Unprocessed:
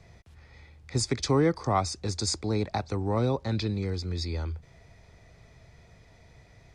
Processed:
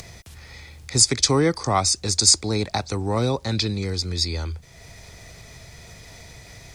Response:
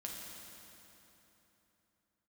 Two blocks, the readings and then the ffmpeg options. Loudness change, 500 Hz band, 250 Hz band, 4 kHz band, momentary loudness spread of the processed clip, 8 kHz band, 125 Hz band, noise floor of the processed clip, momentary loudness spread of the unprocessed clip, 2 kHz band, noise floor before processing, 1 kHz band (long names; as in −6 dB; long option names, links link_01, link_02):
+8.5 dB, +4.0 dB, +3.5 dB, +13.5 dB, 10 LU, +16.5 dB, +3.5 dB, −46 dBFS, 9 LU, +7.5 dB, −57 dBFS, +5.0 dB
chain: -af "acompressor=mode=upward:threshold=-40dB:ratio=2.5,crystalizer=i=4:c=0,volume=3.5dB"